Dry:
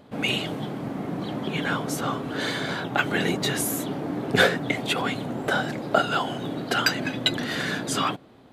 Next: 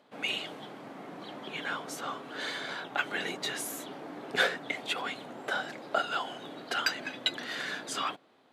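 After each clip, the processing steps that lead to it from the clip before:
meter weighting curve A
level −7.5 dB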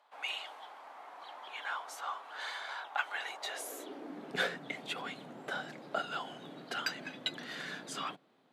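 high-pass filter sweep 880 Hz → 150 Hz, 0:03.33–0:04.37
level −6.5 dB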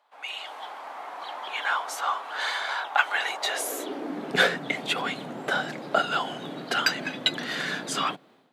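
automatic gain control gain up to 12 dB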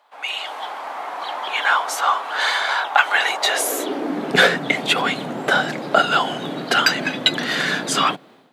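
boost into a limiter +10 dB
level −1 dB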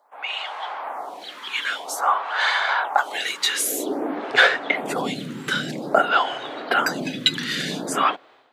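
phaser with staggered stages 0.51 Hz

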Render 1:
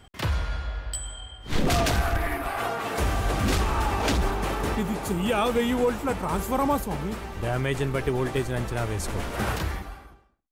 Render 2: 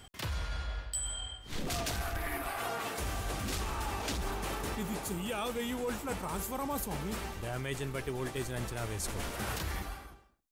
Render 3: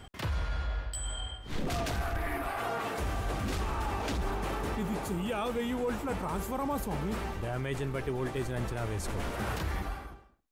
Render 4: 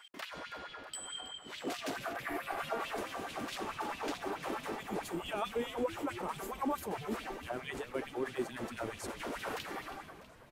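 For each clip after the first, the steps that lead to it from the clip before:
high-shelf EQ 3,300 Hz +9 dB; reversed playback; downward compressor 5 to 1, threshold −31 dBFS, peak gain reduction 12.5 dB; reversed playback; level −2.5 dB
high-shelf EQ 3,100 Hz −11 dB; in parallel at 0 dB: brickwall limiter −34 dBFS, peak gain reduction 9.5 dB
auto-filter high-pass sine 4.6 Hz 250–3,200 Hz; echo with shifted repeats 323 ms, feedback 62%, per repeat −140 Hz, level −14 dB; level −5 dB

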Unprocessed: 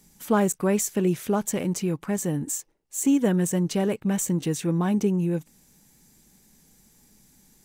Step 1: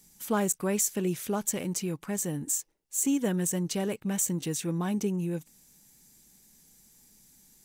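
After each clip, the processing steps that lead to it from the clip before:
high-shelf EQ 2,800 Hz +8 dB
level −6.5 dB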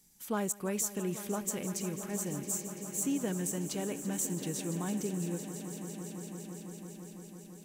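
echo that builds up and dies away 168 ms, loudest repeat 5, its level −15 dB
level −6 dB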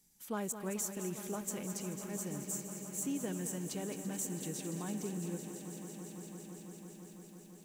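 feedback echo at a low word length 217 ms, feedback 55%, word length 9 bits, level −9.5 dB
level −5 dB

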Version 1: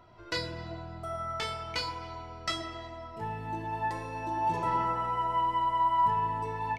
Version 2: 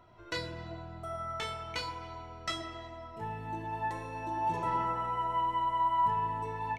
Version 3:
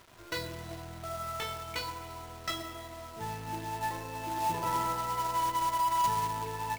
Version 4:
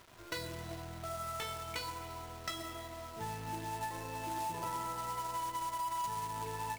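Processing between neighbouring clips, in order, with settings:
notch filter 4,800 Hz, Q 6.3; level −2.5 dB
log-companded quantiser 4 bits
dynamic equaliser 9,000 Hz, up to +4 dB, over −53 dBFS, Q 1.1; downward compressor 5 to 1, threshold −34 dBFS, peak gain reduction 9.5 dB; level −1.5 dB

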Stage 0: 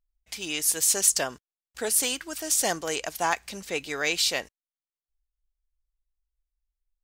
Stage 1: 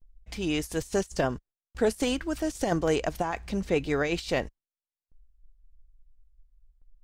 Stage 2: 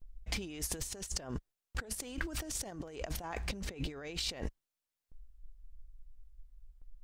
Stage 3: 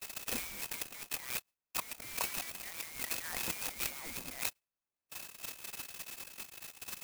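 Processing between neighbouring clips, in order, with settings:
compressor whose output falls as the input rises −27 dBFS, ratio −0.5; spectral tilt −4 dB per octave; noise gate with hold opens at −56 dBFS
compressor whose output falls as the input rises −38 dBFS, ratio −1; level −3 dB
voice inversion scrambler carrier 2,600 Hz; converter with an unsteady clock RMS 0.095 ms

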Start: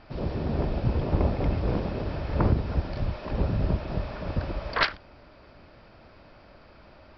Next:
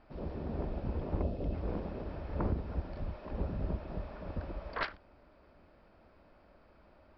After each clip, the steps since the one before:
parametric band 120 Hz −10.5 dB 0.38 octaves
gain on a spectral selection 0:01.22–0:01.54, 730–2,500 Hz −9 dB
high-shelf EQ 2,600 Hz −11 dB
level −8.5 dB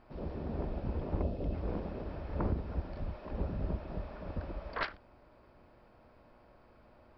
hum with harmonics 120 Hz, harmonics 9, −68 dBFS −1 dB per octave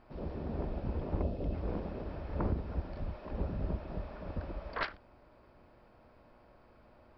no processing that can be heard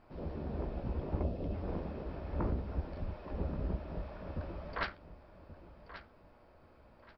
flanger 0.63 Hz, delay 9.6 ms, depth 8.5 ms, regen −38%
repeating echo 1,131 ms, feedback 27%, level −13.5 dB
level +2.5 dB

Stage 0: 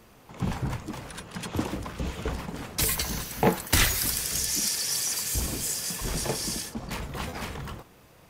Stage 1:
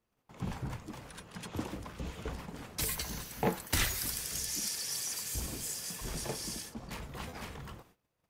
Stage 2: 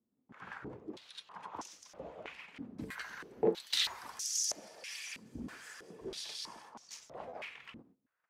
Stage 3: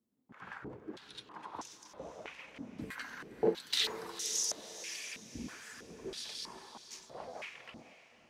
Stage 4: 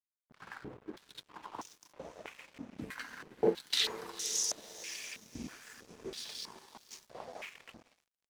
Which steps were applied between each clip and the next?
noise gate −51 dBFS, range −20 dB; level −8.5 dB
band-pass on a step sequencer 3.1 Hz 250–6,000 Hz; level +8.5 dB
feedback delay with all-pass diffusion 495 ms, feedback 40%, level −13 dB
dead-zone distortion −54.5 dBFS; level +1.5 dB

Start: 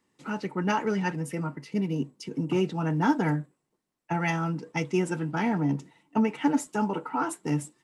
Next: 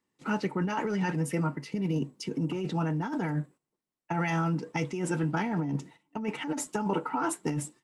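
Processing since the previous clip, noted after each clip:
noise gate −50 dBFS, range −11 dB
compressor whose output falls as the input rises −29 dBFS, ratio −1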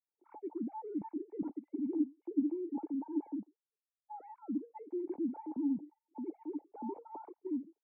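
three sine waves on the formant tracks
formant resonators in series u
level −2.5 dB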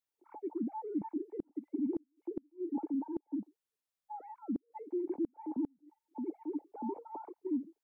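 gate with flip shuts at −28 dBFS, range −38 dB
level +2.5 dB

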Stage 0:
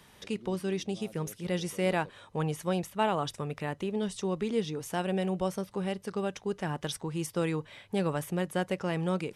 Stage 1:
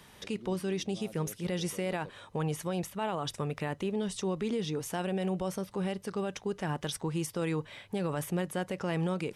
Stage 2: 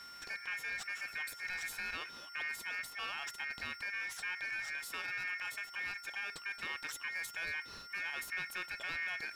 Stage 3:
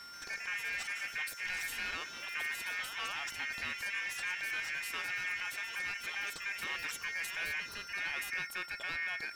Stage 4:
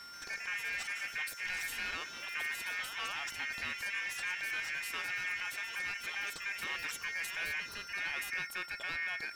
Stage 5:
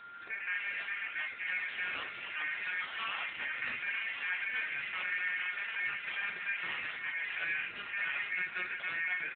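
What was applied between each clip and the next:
brickwall limiter −26 dBFS, peak gain reduction 10 dB; level +2 dB
steady tone 3,400 Hz −46 dBFS; power curve on the samples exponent 0.7; ring modulation 2,000 Hz; level −7 dB
delay with pitch and tempo change per echo 133 ms, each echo +2 semitones, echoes 3, each echo −6 dB; level +1.5 dB
no processing that can be heard
single-tap delay 1,144 ms −9.5 dB; on a send at −2.5 dB: convolution reverb, pre-delay 22 ms; on the sum: level +1.5 dB; AMR narrowband 7.95 kbit/s 8,000 Hz

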